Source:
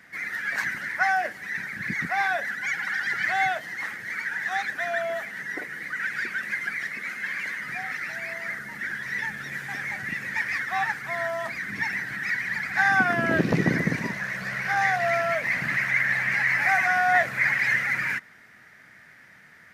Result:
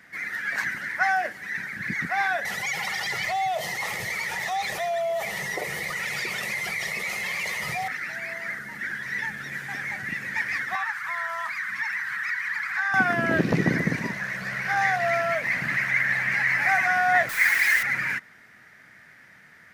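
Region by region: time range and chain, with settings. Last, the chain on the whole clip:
2.45–7.88 fixed phaser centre 650 Hz, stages 4 + fast leveller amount 70%
10.75–12.94 resonant low shelf 740 Hz -14 dB, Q 3 + compressor 2.5:1, threshold -26 dBFS
17.29–17.83 steep high-pass 760 Hz + tilt +2.5 dB/oct + requantised 6-bit, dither triangular
whole clip: dry

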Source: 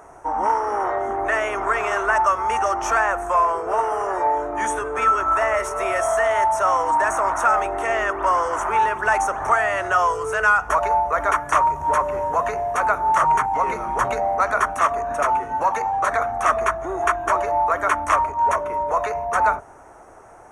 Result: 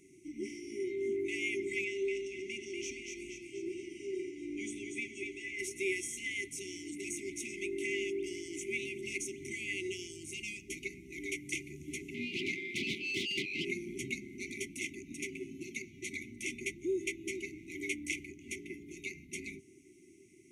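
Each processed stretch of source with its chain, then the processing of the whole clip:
1.84–5.59 compressor 3:1, threshold -22 dBFS + air absorption 60 m + split-band echo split 1200 Hz, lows 84 ms, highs 0.239 s, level -4 dB
12.14–13.65 steep high-pass 400 Hz 96 dB/oct + overdrive pedal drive 23 dB, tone 1100 Hz, clips at -6 dBFS
whole clip: HPF 190 Hz 12 dB/oct; FFT band-reject 400–2000 Hz; high shelf 4500 Hz -5 dB; gain -3 dB

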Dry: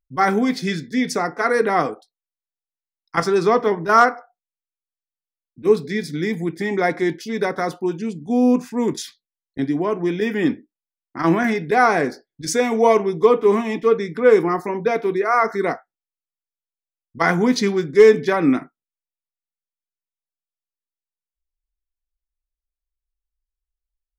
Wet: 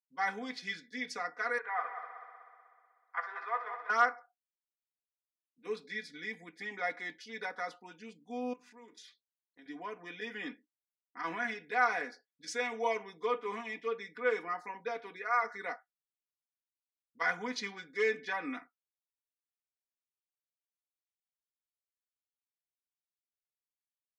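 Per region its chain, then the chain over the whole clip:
1.58–3.9 Butterworth band-pass 1200 Hz, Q 0.89 + multi-head echo 62 ms, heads first and third, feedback 66%, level -10.5 dB
8.53–9.66 compressor 2.5:1, threshold -39 dBFS + bell 360 Hz +6.5 dB 0.32 oct + notches 50/100/150/200/250/300/350/400/450 Hz
whole clip: LPF 2400 Hz 12 dB/oct; differentiator; comb 4.1 ms, depth 81%

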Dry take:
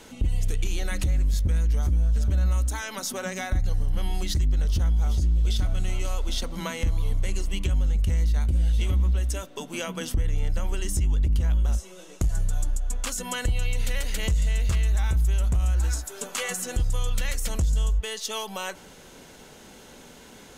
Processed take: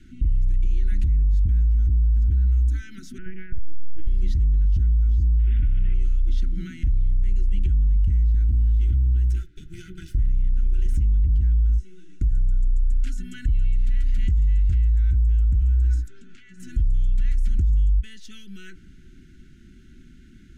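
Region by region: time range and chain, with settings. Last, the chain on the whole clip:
3.18–4.07 Chebyshev low-pass 3000 Hz, order 5 + LPC vocoder at 8 kHz pitch kept
5.39–5.94 CVSD 16 kbps + high shelf 2200 Hz +11.5 dB
8.34–11.22 minimum comb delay 2 ms + high shelf 8100 Hz +5.5 dB
16.08–16.6 LPF 5000 Hz + compressor 5:1, threshold -38 dBFS
whole clip: RIAA curve playback; limiter -7 dBFS; Chebyshev band-stop 370–1400 Hz, order 5; gain -7 dB

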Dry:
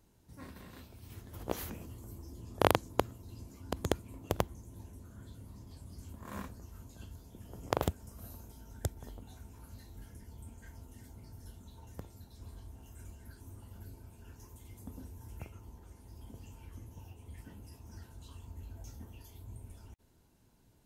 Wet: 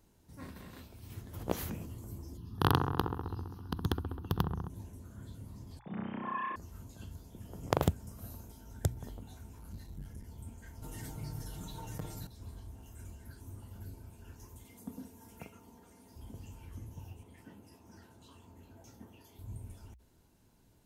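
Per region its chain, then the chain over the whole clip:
2.37–4.7 fixed phaser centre 2200 Hz, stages 6 + dark delay 66 ms, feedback 75%, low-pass 1300 Hz, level -6 dB
5.79–6.56 sine-wave speech + flutter echo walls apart 5.5 m, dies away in 1.3 s
9.59–10.24 low shelf 65 Hz +10 dB + core saturation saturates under 130 Hz
10.82–12.27 bell 190 Hz -4 dB 2.2 oct + comb 6.5 ms, depth 86% + fast leveller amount 70%
14.64–16.16 HPF 150 Hz + comb 4.3 ms, depth 45%
17.23–19.39 HPF 160 Hz + high shelf 3800 Hz -6.5 dB
whole clip: notches 60/120 Hz; dynamic EQ 140 Hz, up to +7 dB, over -54 dBFS, Q 1.1; gain +1 dB

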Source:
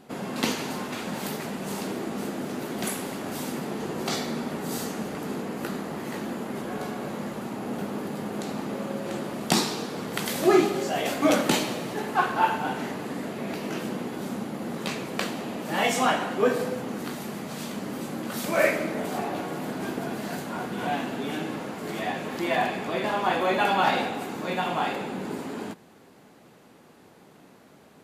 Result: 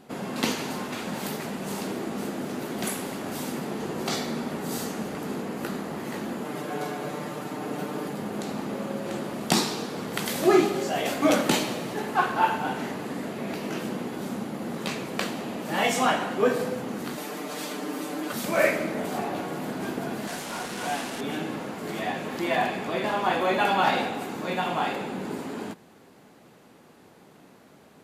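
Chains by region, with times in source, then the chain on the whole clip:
6.44–8.13 HPF 170 Hz 6 dB/oct + comb 6.7 ms, depth 76%
17.17–18.32 HPF 230 Hz 24 dB/oct + comb 6.7 ms, depth 98%
20.27–21.21 delta modulation 64 kbps, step -28.5 dBFS + low shelf 330 Hz -7.5 dB
whole clip: dry

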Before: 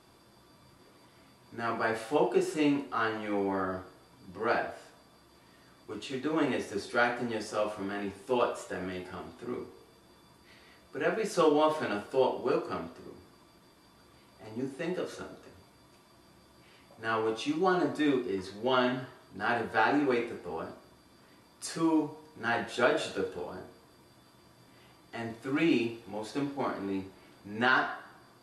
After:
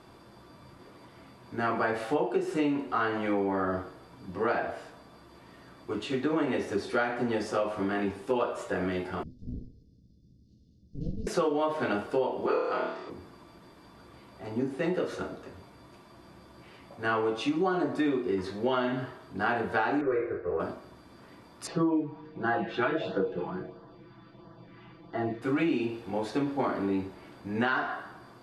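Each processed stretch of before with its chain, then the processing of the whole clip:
9.23–11.27 minimum comb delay 1.4 ms + elliptic band-stop 320–5300 Hz, stop band 50 dB + air absorption 240 m
12.46–13.1 three-band isolator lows -18 dB, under 400 Hz, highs -21 dB, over 7400 Hz + flutter echo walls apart 4.7 m, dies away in 0.68 s
20.01–20.6 sample leveller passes 1 + air absorption 430 m + fixed phaser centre 850 Hz, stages 6
21.67–25.42 air absorption 240 m + comb 6 ms, depth 69% + LFO notch sine 1.5 Hz 510–2500 Hz
whole clip: high shelf 4000 Hz -11 dB; compressor 6:1, threshold -32 dBFS; gain +7.5 dB

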